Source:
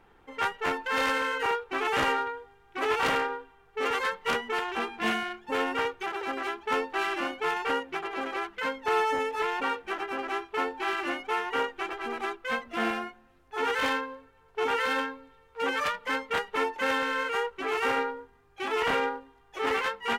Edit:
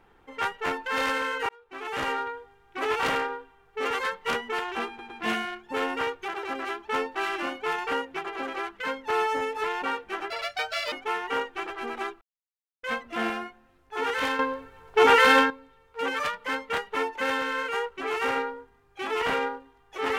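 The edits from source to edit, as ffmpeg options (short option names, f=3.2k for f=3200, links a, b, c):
-filter_complex "[0:a]asplit=9[a][b][c][d][e][f][g][h][i];[a]atrim=end=1.49,asetpts=PTS-STARTPTS,afade=t=out:st=1.486:d=0.004:c=hsin[j];[b]atrim=start=1.49:end=4.992,asetpts=PTS-STARTPTS,afade=t=in:d=0.81[k];[c]atrim=start=4.878:end=4.992[l];[d]atrim=start=4.878:end=10.084[m];[e]atrim=start=10.08:end=11.15,asetpts=PTS-STARTPTS,asetrate=75852,aresample=44100,atrim=end_sample=27434,asetpts=PTS-STARTPTS[n];[f]atrim=start=11.146:end=12.44,asetpts=PTS-STARTPTS,afade=t=out:st=1.29:d=0.004:c=hsin,apad=pad_dur=0.62[o];[g]atrim=start=12.44:end=14.002,asetpts=PTS-STARTPTS,afade=t=in:d=0.004:c=hsin[p];[h]atrim=start=13.998:end=15.112,asetpts=PTS-STARTPTS,volume=10.5dB[q];[i]atrim=start=15.108[r];[j][k]concat=n=2:v=0:a=1[s];[s][l]acrossfade=d=0.004:c1=hsin:c2=hsin[t];[t][m]acrossfade=d=0.004:c1=hsin:c2=hsin[u];[u][n]acrossfade=d=0.004:c1=hsin:c2=hsin[v];[o][p]concat=n=2:v=0:a=1[w];[v][w]acrossfade=d=0.004:c1=hsin:c2=hsin[x];[x][q]acrossfade=d=0.004:c1=hsin:c2=hsin[y];[y][r]acrossfade=d=0.004:c1=hsin:c2=hsin"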